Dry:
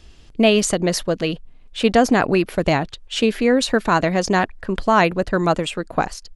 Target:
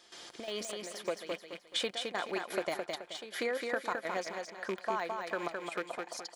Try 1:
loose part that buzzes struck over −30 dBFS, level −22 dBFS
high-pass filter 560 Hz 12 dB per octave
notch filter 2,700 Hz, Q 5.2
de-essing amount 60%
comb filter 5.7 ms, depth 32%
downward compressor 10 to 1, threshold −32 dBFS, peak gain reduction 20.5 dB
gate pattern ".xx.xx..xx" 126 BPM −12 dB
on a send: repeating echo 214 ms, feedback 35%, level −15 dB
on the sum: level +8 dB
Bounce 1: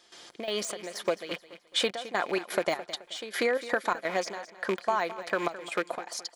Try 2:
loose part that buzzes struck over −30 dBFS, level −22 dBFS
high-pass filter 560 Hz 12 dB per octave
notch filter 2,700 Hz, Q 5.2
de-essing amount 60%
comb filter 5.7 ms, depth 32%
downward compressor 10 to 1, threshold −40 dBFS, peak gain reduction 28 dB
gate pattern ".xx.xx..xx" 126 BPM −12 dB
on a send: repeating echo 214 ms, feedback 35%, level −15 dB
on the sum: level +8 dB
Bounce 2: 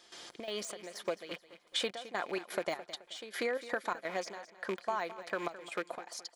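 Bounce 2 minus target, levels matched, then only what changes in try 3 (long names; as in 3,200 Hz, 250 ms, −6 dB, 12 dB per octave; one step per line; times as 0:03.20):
echo-to-direct −10.5 dB
change: repeating echo 214 ms, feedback 35%, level −4.5 dB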